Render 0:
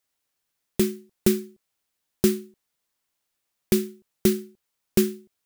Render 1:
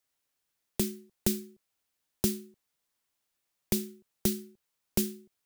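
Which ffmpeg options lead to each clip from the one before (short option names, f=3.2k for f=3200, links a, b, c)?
-filter_complex "[0:a]acrossover=split=180|3000[a][b][c];[b]acompressor=threshold=-31dB:ratio=6[d];[a][d][c]amix=inputs=3:normalize=0,volume=-2.5dB"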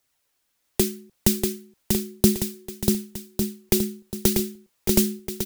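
-filter_complex "[0:a]aphaser=in_gain=1:out_gain=1:delay=4.3:decay=0.36:speed=0.88:type=triangular,asplit=2[a][b];[b]aecho=0:1:640|1152|1562|1889|2151:0.631|0.398|0.251|0.158|0.1[c];[a][c]amix=inputs=2:normalize=0,volume=8dB"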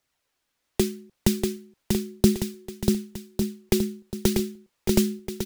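-af "highshelf=f=7.2k:g=-10.5"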